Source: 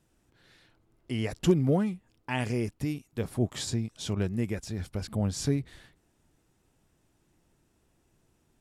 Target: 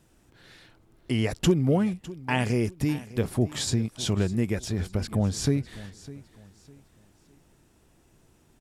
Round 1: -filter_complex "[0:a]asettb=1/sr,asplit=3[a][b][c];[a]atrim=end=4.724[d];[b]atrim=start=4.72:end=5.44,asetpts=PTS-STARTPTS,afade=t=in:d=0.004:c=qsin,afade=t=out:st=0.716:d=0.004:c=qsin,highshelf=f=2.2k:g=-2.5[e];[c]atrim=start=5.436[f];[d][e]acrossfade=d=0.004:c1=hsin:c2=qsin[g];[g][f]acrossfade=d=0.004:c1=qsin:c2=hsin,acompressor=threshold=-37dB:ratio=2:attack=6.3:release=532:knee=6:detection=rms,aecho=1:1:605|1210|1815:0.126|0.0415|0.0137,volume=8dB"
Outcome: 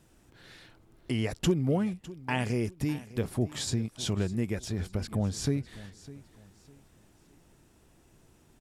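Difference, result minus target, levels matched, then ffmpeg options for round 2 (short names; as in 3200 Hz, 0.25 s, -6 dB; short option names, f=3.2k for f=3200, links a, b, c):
compressor: peak gain reduction +4.5 dB
-filter_complex "[0:a]asettb=1/sr,asplit=3[a][b][c];[a]atrim=end=4.724[d];[b]atrim=start=4.72:end=5.44,asetpts=PTS-STARTPTS,afade=t=in:d=0.004:c=qsin,afade=t=out:st=0.716:d=0.004:c=qsin,highshelf=f=2.2k:g=-2.5[e];[c]atrim=start=5.436[f];[d][e]acrossfade=d=0.004:c1=hsin:c2=qsin[g];[g][f]acrossfade=d=0.004:c1=qsin:c2=hsin,acompressor=threshold=-28dB:ratio=2:attack=6.3:release=532:knee=6:detection=rms,aecho=1:1:605|1210|1815:0.126|0.0415|0.0137,volume=8dB"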